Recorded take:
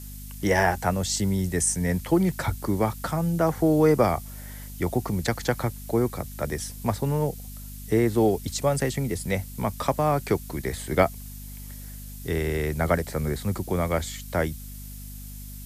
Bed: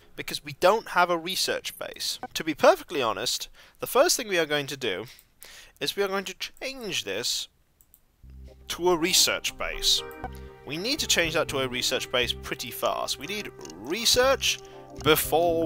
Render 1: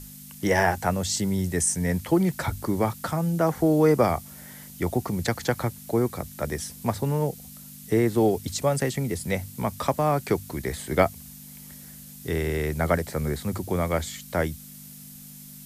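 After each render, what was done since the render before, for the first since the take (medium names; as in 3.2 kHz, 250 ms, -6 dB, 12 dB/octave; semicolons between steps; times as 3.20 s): hum notches 50/100 Hz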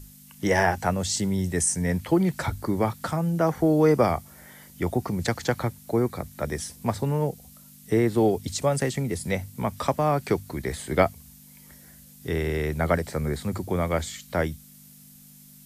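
noise print and reduce 6 dB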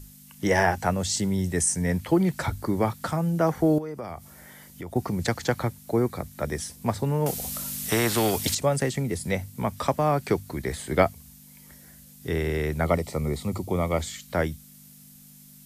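3.78–4.96 s: compression 4:1, threshold -34 dBFS; 7.26–8.55 s: spectrum-flattening compressor 2:1; 12.85–14.01 s: Butterworth band-stop 1.6 kHz, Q 3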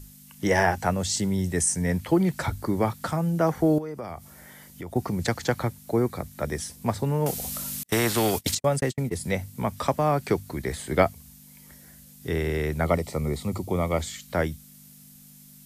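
7.83–9.13 s: gate -29 dBFS, range -44 dB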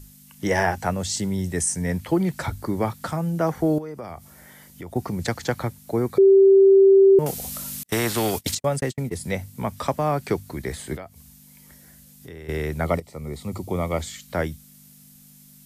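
6.18–7.19 s: bleep 389 Hz -9.5 dBFS; 10.96–12.49 s: compression 3:1, threshold -40 dBFS; 13.00–13.66 s: fade in, from -13.5 dB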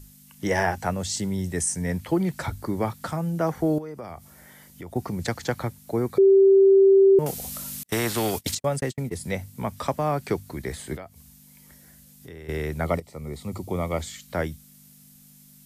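trim -2 dB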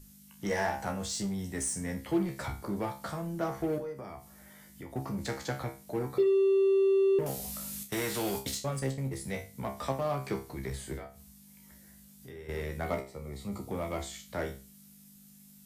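feedback comb 67 Hz, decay 0.32 s, harmonics all, mix 90%; in parallel at -10 dB: wavefolder -36 dBFS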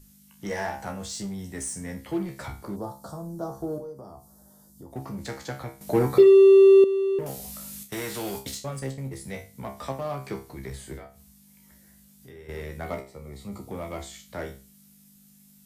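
2.76–4.93 s: Butterworth band-stop 2.3 kHz, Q 0.63; 5.81–6.84 s: gain +11.5 dB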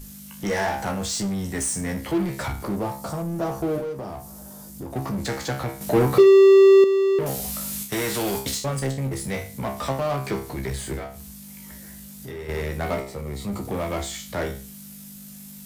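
power-law waveshaper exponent 0.7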